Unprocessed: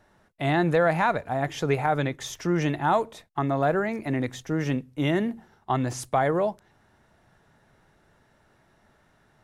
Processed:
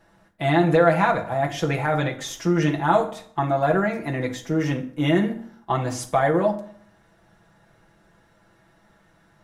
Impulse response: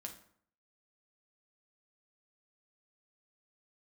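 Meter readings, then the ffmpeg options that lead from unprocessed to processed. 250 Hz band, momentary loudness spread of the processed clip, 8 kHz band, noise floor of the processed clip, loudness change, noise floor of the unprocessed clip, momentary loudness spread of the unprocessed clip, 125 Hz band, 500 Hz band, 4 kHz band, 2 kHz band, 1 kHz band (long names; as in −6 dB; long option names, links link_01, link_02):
+4.0 dB, 10 LU, +3.0 dB, −59 dBFS, +3.5 dB, −63 dBFS, 8 LU, +3.5 dB, +4.0 dB, +3.5 dB, +3.0 dB, +3.0 dB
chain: -filter_complex "[0:a]asplit=2[link_01][link_02];[1:a]atrim=start_sample=2205,adelay=6[link_03];[link_02][link_03]afir=irnorm=-1:irlink=0,volume=4.5dB[link_04];[link_01][link_04]amix=inputs=2:normalize=0"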